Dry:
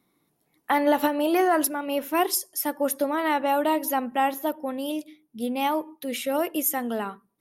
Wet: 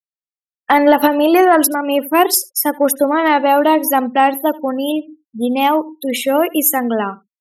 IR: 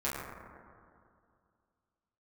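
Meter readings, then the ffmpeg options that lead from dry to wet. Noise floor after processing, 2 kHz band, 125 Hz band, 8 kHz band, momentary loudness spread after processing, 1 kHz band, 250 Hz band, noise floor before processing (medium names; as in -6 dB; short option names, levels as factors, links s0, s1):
under -85 dBFS, +10.5 dB, no reading, +10.5 dB, 9 LU, +10.5 dB, +11.0 dB, -72 dBFS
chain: -af "afftfilt=real='re*gte(hypot(re,im),0.0158)':imag='im*gte(hypot(re,im),0.0158)':win_size=1024:overlap=0.75,aecho=1:1:77:0.0708,acontrast=85,volume=1.58"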